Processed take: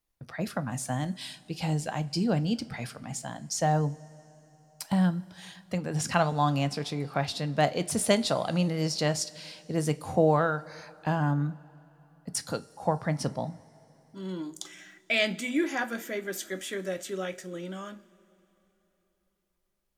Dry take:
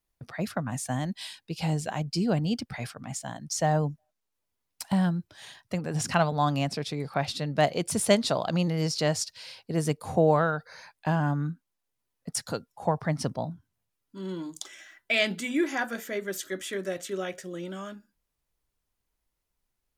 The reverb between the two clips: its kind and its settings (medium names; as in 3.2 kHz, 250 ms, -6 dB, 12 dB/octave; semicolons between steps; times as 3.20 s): two-slope reverb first 0.24 s, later 3.6 s, from -21 dB, DRR 11.5 dB; trim -1 dB